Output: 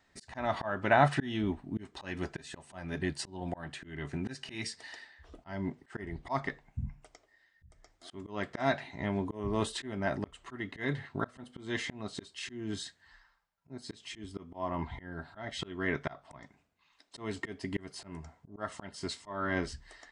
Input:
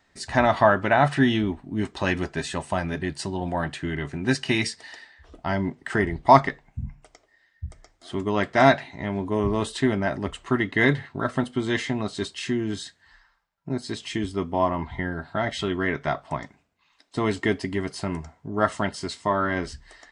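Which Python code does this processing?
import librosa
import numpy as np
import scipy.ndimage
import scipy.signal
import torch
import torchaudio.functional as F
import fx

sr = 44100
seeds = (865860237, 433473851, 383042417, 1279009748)

y = fx.auto_swell(x, sr, attack_ms=309.0)
y = y * librosa.db_to_amplitude(-4.5)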